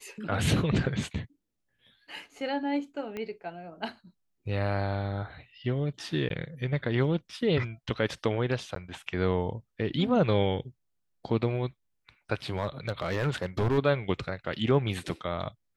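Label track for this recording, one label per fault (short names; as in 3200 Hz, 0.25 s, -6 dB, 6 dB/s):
3.170000	3.170000	pop -23 dBFS
6.290000	6.300000	gap 12 ms
8.750000	8.760000	gap 13 ms
12.490000	13.790000	clipped -22 dBFS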